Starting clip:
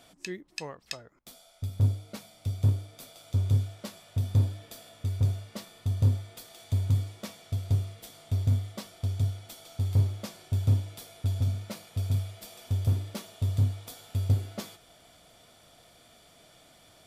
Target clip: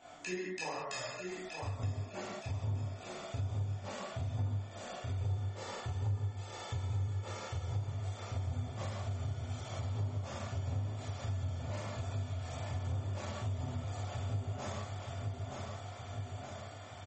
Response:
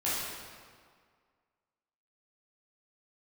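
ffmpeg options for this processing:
-filter_complex "[0:a]firequalizer=gain_entry='entry(260,0);entry(770,9);entry(4000,-4);entry(6100,-7)':delay=0.05:min_phase=1,flanger=delay=20:depth=4.6:speed=2.3,equalizer=f=6900:w=2.2:g=10.5,asettb=1/sr,asplit=3[s0][s1][s2];[s0]atrim=end=5.164[s3];[s1]atrim=start=5.16:end=7.72,asetpts=PTS-STARTPTS,afade=t=in:d=0.004:c=qsin,afade=t=out:st=2.556:d=0.004:c=qsin,aecho=1:1:2.3:0.64,atrim=end_sample=112896[s4];[s2]atrim=start=7.716[s5];[s3][s4]acrossfade=d=0.004:c1=hsin:c2=qsin[s6];[s6][s5]acrossfade=d=0.004:c1=qsin:c2=hsin,aecho=1:1:921|1842|2763|3684|4605|5526:0.376|0.203|0.11|0.0592|0.032|0.0173[s7];[1:a]atrim=start_sample=2205,afade=t=out:st=0.28:d=0.01,atrim=end_sample=12789[s8];[s7][s8]afir=irnorm=-1:irlink=0,acompressor=threshold=0.02:ratio=3,volume=0.708" -ar 44100 -c:a libmp3lame -b:a 32k

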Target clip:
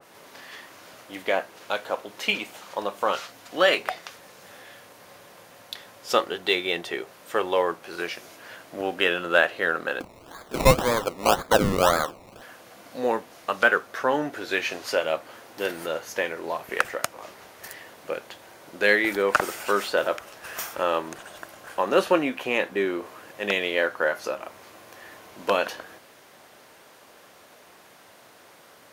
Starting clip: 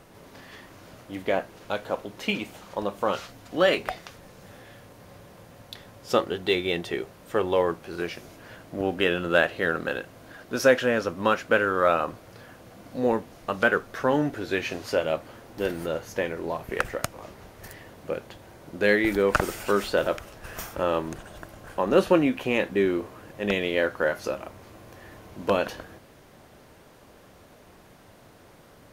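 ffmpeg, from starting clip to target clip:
-filter_complex "[0:a]highpass=f=870:p=1,asettb=1/sr,asplit=3[s0][s1][s2];[s0]atrim=end=10.004[s3];[s1]atrim=start=10:end=12.42,asetpts=PTS-STARTPTS,afade=t=in:d=0.004:c=qsin,afade=t=out:st=2.416:d=0.004:c=qsin,acrusher=samples=22:mix=1:aa=0.000001:lfo=1:lforange=13.2:lforate=1.9[s4];[s2]atrim=start=12.416[s5];[s3][s4]acrossfade=d=0.004:c1=hsin:c2=qsin[s6];[s6][s5]acrossfade=d=0.004:c1=qsin:c2=hsin,adynamicequalizer=threshold=0.00891:dfrequency=1700:dqfactor=0.7:tfrequency=1700:tqfactor=0.7:attack=5:release=100:ratio=0.375:range=2.5:mode=cutabove:tftype=highshelf,volume=1.88"

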